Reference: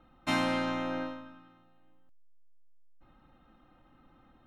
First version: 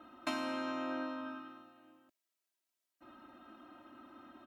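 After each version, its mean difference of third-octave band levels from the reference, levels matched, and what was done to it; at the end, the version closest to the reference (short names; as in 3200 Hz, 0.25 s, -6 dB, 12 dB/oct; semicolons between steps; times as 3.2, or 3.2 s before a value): 7.5 dB: HPF 200 Hz 12 dB/oct; comb 3.1 ms, depth 81%; compressor 8:1, threshold -41 dBFS, peak gain reduction 17.5 dB; gain +5.5 dB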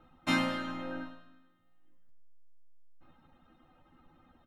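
3.0 dB: reverb removal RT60 1.1 s; doubler 12 ms -5.5 dB; feedback echo 0.104 s, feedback 48%, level -9.5 dB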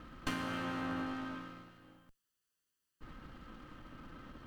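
11.5 dB: minimum comb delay 0.66 ms; dynamic EQ 5400 Hz, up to -5 dB, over -51 dBFS, Q 0.74; compressor 12:1, threshold -46 dBFS, peak gain reduction 19.5 dB; gain +11 dB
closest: second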